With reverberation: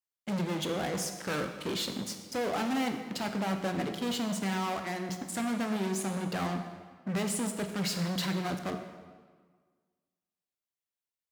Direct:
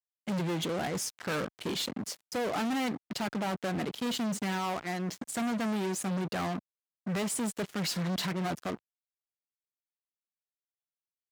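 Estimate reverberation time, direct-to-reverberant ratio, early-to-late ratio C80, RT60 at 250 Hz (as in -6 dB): 1.6 s, 5.5 dB, 8.5 dB, 1.7 s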